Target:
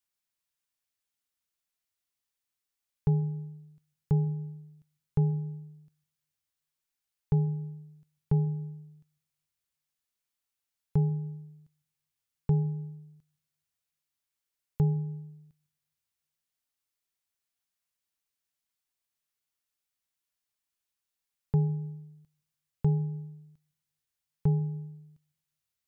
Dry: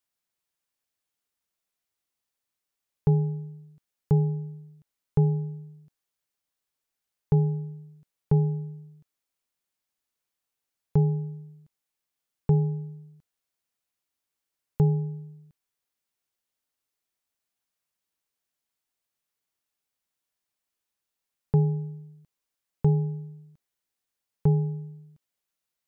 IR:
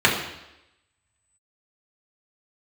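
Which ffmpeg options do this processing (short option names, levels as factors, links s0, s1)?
-filter_complex "[0:a]equalizer=f=460:t=o:w=2.7:g=-6,asplit=2[s0][s1];[1:a]atrim=start_sample=2205,adelay=130[s2];[s1][s2]afir=irnorm=-1:irlink=0,volume=0.00631[s3];[s0][s3]amix=inputs=2:normalize=0,volume=0.841"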